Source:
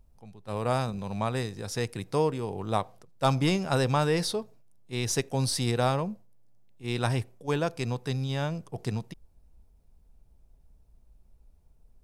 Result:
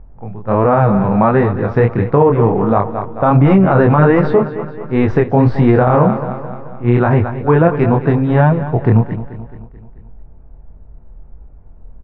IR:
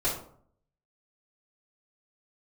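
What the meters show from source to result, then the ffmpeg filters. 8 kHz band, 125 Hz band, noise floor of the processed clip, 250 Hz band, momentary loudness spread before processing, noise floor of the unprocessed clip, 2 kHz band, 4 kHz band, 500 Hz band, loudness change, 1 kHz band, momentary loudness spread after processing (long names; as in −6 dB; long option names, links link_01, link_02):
below −25 dB, +17.0 dB, −38 dBFS, +18.5 dB, 11 LU, −61 dBFS, +13.0 dB, can't be measured, +17.0 dB, +16.5 dB, +16.0 dB, 12 LU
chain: -af "lowpass=frequency=1700:width=0.5412,lowpass=frequency=1700:width=1.3066,flanger=delay=20:depth=7:speed=1.4,aecho=1:1:217|434|651|868|1085:0.188|0.0998|0.0529|0.028|0.0149,alimiter=level_in=24.5dB:limit=-1dB:release=50:level=0:latency=1,volume=-1dB"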